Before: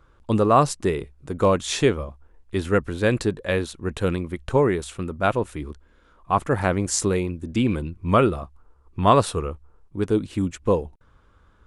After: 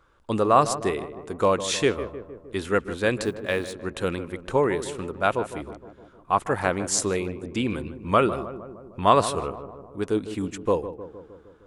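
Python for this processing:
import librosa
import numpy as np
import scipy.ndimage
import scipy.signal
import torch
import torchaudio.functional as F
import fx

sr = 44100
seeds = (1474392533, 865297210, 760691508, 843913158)

y = fx.law_mismatch(x, sr, coded='A', at=(3.24, 3.73))
y = fx.low_shelf(y, sr, hz=250.0, db=-10.0)
y = fx.echo_filtered(y, sr, ms=154, feedback_pct=65, hz=1300.0, wet_db=-11.5)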